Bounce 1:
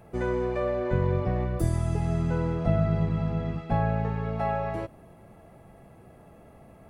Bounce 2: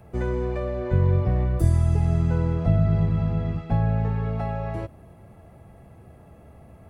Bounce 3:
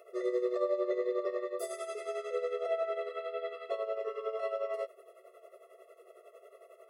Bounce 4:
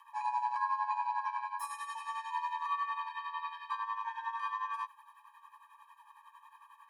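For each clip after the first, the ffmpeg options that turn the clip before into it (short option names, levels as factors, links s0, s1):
-filter_complex "[0:a]acrossover=split=440|3000[s0][s1][s2];[s1]acompressor=threshold=0.0251:ratio=6[s3];[s0][s3][s2]amix=inputs=3:normalize=0,equalizer=f=77:t=o:w=1.4:g=9.5"
-af "tremolo=f=11:d=0.69,afftfilt=real='re*eq(mod(floor(b*sr/1024/360),2),1)':imag='im*eq(mod(floor(b*sr/1024/360),2),1)':win_size=1024:overlap=0.75,volume=1.5"
-af "afreqshift=480,volume=0.794"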